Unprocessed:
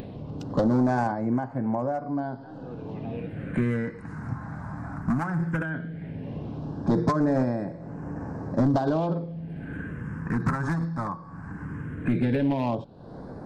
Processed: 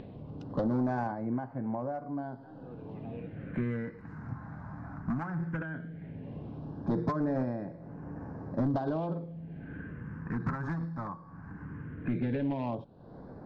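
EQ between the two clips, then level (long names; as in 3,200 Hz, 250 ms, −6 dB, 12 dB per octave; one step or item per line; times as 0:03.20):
high-frequency loss of the air 160 metres
−7.0 dB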